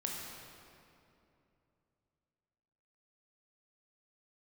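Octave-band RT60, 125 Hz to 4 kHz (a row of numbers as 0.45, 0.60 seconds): 3.6, 3.2, 3.0, 2.6, 2.2, 1.8 seconds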